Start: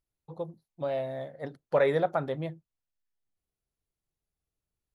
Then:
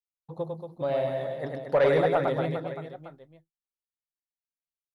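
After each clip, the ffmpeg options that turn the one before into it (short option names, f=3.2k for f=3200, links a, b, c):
-af "aecho=1:1:100|230|399|618.7|904.3:0.631|0.398|0.251|0.158|0.1,agate=range=-33dB:threshold=-48dB:ratio=3:detection=peak,aeval=exprs='0.282*sin(PI/2*1.41*val(0)/0.282)':c=same,volume=-4dB"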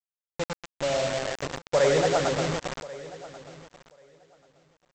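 -af "aresample=16000,acrusher=bits=4:mix=0:aa=0.000001,aresample=44100,aecho=1:1:1087|2174:0.119|0.019"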